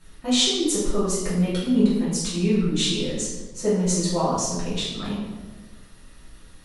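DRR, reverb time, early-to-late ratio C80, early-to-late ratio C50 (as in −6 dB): −10.5 dB, 1.3 s, 4.0 dB, 1.0 dB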